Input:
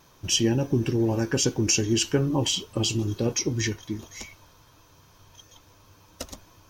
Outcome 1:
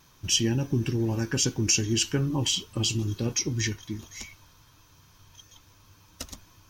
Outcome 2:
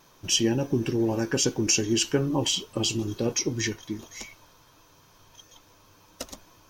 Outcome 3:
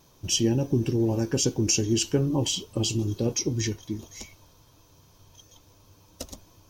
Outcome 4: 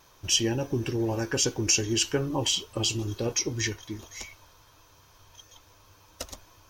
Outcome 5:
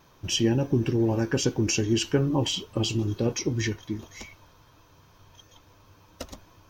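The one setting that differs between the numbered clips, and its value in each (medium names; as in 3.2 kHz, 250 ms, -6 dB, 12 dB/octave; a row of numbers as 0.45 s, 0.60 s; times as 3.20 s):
peaking EQ, frequency: 550 Hz, 71 Hz, 1.6 kHz, 190 Hz, 9.6 kHz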